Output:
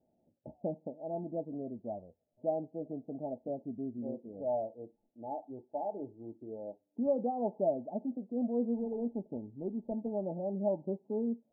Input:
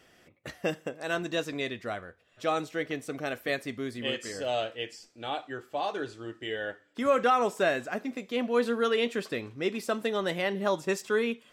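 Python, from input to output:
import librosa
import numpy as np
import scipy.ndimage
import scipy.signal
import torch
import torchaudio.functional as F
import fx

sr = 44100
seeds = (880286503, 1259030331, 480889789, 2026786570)

y = fx.median_filter(x, sr, points=41, at=(8.74, 10.13))
y = fx.noise_reduce_blind(y, sr, reduce_db=7)
y = scipy.signal.sosfilt(scipy.signal.cheby1(6, 9, 890.0, 'lowpass', fs=sr, output='sos'), y)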